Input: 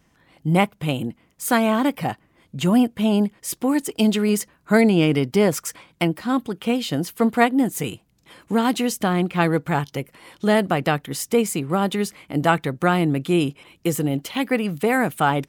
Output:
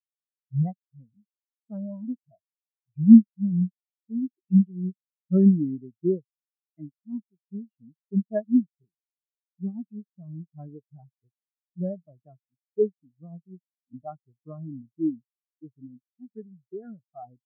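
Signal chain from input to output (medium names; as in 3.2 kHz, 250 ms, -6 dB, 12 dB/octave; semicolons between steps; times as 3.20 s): vibrato 3.7 Hz 64 cents; wide varispeed 0.887×; spectral contrast expander 4:1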